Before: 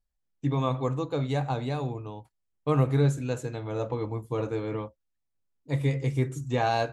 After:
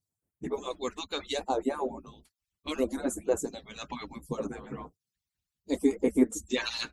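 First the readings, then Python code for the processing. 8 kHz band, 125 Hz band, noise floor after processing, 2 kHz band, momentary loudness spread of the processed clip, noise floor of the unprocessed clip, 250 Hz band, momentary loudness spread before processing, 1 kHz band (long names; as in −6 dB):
+7.5 dB, −22.5 dB, below −85 dBFS, −1.5 dB, 16 LU, −79 dBFS, +0.5 dB, 10 LU, −6.0 dB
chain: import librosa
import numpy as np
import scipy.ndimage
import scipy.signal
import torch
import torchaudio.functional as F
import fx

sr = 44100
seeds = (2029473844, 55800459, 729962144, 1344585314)

y = fx.hpss_only(x, sr, part='percussive')
y = fx.phaser_stages(y, sr, stages=2, low_hz=450.0, high_hz=3700.0, hz=0.7, feedback_pct=50)
y = y * 10.0 ** (8.0 / 20.0)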